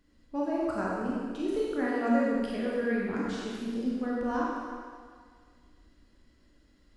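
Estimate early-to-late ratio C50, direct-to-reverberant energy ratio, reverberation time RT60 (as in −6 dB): −2.5 dB, −5.5 dB, 1.8 s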